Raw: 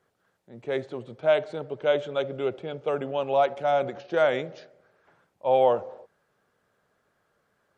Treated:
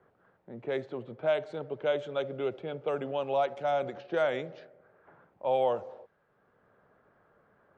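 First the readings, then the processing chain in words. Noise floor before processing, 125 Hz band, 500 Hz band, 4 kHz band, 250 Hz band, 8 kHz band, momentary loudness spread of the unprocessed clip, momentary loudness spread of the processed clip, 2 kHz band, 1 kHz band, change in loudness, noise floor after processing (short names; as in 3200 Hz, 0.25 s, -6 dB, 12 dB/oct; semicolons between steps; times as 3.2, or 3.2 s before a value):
-73 dBFS, -4.5 dB, -5.5 dB, -5.5 dB, -4.0 dB, n/a, 11 LU, 10 LU, -5.5 dB, -6.0 dB, -5.5 dB, -70 dBFS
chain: low-pass opened by the level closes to 1500 Hz, open at -20.5 dBFS; three-band squash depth 40%; gain -5 dB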